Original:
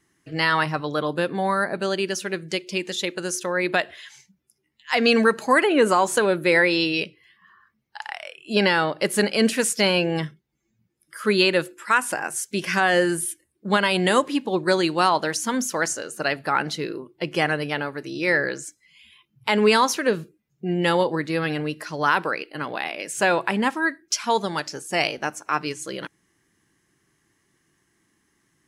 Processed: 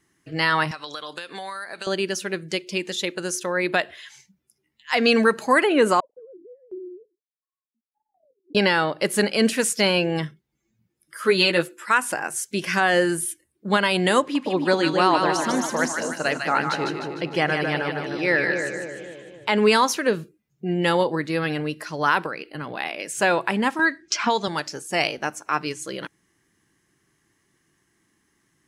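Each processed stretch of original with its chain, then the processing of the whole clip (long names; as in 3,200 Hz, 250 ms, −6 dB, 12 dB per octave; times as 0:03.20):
0:00.71–0:01.87: meter weighting curve ITU-R 468 + downward compressor 12 to 1, threshold −29 dBFS
0:06.00–0:08.55: three sine waves on the formant tracks + transistor ladder low-pass 320 Hz, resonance 40% + shaped tremolo saw down 1.4 Hz, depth 85%
0:11.17–0:11.86: high-pass filter 140 Hz + double-tracking delay 12 ms −4 dB
0:14.20–0:19.57: high-shelf EQ 8,600 Hz −11.5 dB + echo with a time of its own for lows and highs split 770 Hz, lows 260 ms, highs 151 ms, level −4.5 dB
0:22.26–0:22.78: parametric band 130 Hz +7 dB 1.8 octaves + downward compressor 2 to 1, threshold −31 dBFS
0:23.79–0:24.48: low-pass filter 7,200 Hz 24 dB per octave + multiband upward and downward compressor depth 100%
whole clip: no processing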